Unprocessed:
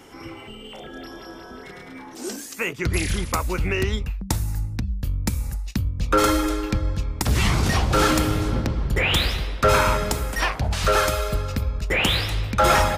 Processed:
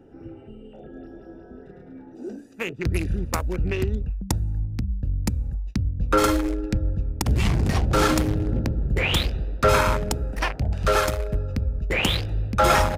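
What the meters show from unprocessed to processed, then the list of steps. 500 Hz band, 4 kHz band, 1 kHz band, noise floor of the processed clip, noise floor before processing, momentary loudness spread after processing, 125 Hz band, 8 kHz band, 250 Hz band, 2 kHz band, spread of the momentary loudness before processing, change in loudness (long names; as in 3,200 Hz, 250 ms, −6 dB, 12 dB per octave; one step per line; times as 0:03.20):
−1.0 dB, −4.0 dB, −2.0 dB, −45 dBFS, −40 dBFS, 22 LU, 0.0 dB, −4.0 dB, −0.5 dB, −3.5 dB, 19 LU, −1.5 dB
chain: adaptive Wiener filter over 41 samples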